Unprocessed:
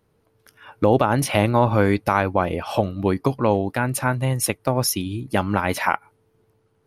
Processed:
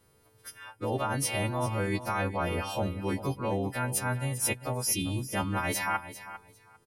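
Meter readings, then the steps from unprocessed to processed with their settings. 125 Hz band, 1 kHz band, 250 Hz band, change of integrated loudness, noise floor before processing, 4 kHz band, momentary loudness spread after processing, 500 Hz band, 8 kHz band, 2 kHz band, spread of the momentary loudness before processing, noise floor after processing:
-9.0 dB, -10.5 dB, -10.5 dB, -9.0 dB, -65 dBFS, -5.0 dB, 14 LU, -12.0 dB, -3.5 dB, -7.5 dB, 6 LU, -64 dBFS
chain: frequency quantiser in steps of 2 st; low shelf 73 Hz +8.5 dB; reverse; compressor 6:1, threshold -28 dBFS, peak gain reduction 17.5 dB; reverse; feedback echo 0.399 s, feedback 18%, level -13.5 dB

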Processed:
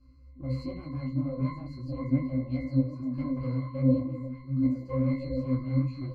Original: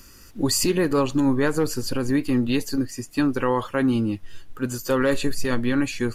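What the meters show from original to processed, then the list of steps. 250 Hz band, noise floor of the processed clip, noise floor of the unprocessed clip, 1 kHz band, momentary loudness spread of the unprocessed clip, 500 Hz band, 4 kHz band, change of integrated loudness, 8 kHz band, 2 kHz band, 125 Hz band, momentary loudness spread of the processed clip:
-6.5 dB, -50 dBFS, -47 dBFS, -16.0 dB, 7 LU, -12.5 dB, under -20 dB, -7.0 dB, under -40 dB, -20.5 dB, +1.0 dB, 9 LU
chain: one-sided fold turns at -23 dBFS; in parallel at -2 dB: vocal rider; on the sum: low shelf 100 Hz +6.5 dB; octave resonator C, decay 0.48 s; on a send: delay with a stepping band-pass 0.726 s, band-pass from 190 Hz, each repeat 1.4 oct, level -1 dB; on the sum: detuned doubles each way 52 cents; gain +4.5 dB

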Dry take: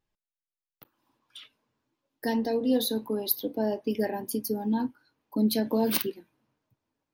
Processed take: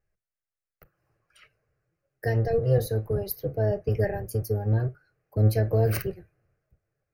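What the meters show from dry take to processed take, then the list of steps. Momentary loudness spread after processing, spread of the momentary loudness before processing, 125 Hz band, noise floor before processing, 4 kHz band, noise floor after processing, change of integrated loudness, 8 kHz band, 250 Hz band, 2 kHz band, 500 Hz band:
8 LU, 7 LU, +19.0 dB, under -85 dBFS, -11.5 dB, under -85 dBFS, +2.0 dB, -6.0 dB, -7.5 dB, +2.5 dB, +3.0 dB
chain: octaver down 1 oct, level +3 dB; high shelf 6200 Hz -11.5 dB; fixed phaser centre 950 Hz, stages 6; gain +4 dB

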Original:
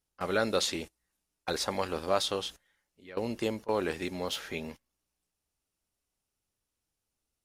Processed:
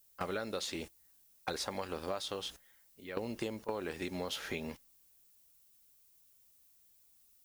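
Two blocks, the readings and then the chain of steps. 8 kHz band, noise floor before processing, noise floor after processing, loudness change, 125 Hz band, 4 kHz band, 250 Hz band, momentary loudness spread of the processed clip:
-7.0 dB, under -85 dBFS, -66 dBFS, -7.0 dB, -5.5 dB, -7.0 dB, -5.5 dB, 8 LU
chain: compressor 10:1, threshold -37 dBFS, peak gain reduction 16 dB; added noise violet -69 dBFS; gain +3 dB

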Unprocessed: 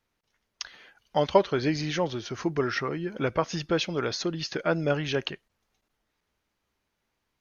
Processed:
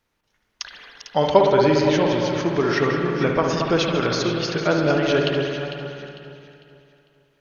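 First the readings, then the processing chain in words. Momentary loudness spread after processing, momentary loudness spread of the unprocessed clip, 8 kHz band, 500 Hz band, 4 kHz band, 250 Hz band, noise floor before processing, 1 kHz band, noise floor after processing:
18 LU, 14 LU, n/a, +8.5 dB, +6.5 dB, +8.5 dB, -80 dBFS, +8.0 dB, -71 dBFS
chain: reverse delay 0.406 s, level -11 dB; echo with dull and thin repeats by turns 0.225 s, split 1300 Hz, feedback 58%, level -6 dB; spring tank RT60 1.8 s, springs 58 ms, chirp 20 ms, DRR 2 dB; gain +4.5 dB

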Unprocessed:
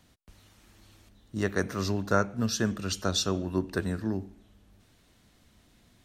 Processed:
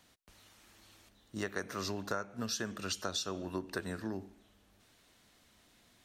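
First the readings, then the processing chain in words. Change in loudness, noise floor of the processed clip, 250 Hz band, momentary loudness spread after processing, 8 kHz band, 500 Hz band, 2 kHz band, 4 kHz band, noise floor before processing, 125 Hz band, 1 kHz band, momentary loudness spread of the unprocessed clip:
-8.5 dB, -67 dBFS, -10.5 dB, 6 LU, -6.0 dB, -9.0 dB, -6.5 dB, -6.0 dB, -63 dBFS, -13.5 dB, -7.5 dB, 7 LU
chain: low shelf 270 Hz -12 dB; compressor 6:1, threshold -33 dBFS, peak gain reduction 12 dB

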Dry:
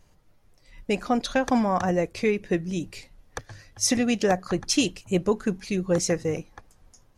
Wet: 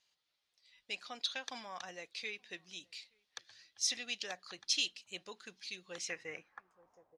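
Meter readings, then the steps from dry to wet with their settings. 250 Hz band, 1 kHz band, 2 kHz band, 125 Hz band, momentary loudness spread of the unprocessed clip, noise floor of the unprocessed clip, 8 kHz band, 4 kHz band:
-32.0 dB, -21.0 dB, -10.0 dB, under -30 dB, 17 LU, -60 dBFS, -11.0 dB, -4.5 dB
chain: outdoor echo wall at 150 m, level -30 dB; band-pass sweep 3800 Hz -> 660 Hz, 5.84–7.14; gain -1 dB

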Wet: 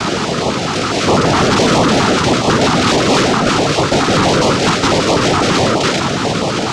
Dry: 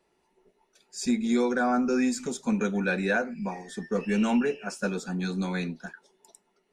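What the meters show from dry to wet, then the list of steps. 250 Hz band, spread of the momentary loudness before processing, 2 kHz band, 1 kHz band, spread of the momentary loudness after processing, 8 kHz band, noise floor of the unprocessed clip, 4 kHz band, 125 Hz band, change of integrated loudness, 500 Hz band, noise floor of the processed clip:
+12.0 dB, 11 LU, +15.0 dB, +20.5 dB, 5 LU, +20.0 dB, -72 dBFS, +27.0 dB, +19.5 dB, +15.0 dB, +17.0 dB, -18 dBFS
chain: per-bin compression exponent 0.2; noise vocoder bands 2; sample leveller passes 3; LPF 4600 Hz 12 dB/oct; bell 1300 Hz +8.5 dB 0.31 oct; stepped notch 12 Hz 540–1500 Hz; gain +1.5 dB

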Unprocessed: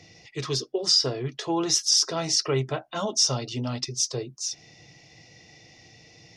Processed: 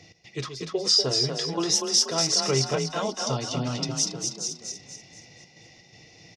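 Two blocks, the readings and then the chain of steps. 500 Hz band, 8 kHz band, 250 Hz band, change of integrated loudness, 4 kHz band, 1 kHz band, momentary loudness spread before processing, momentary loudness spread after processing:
+1.0 dB, 0.0 dB, +0.5 dB, +0.5 dB, +0.5 dB, +0.5 dB, 12 LU, 16 LU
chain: step gate "x.xx.xxxxxx" 124 bpm -12 dB; on a send: frequency-shifting echo 0.241 s, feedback 43%, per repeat +30 Hz, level -4.5 dB

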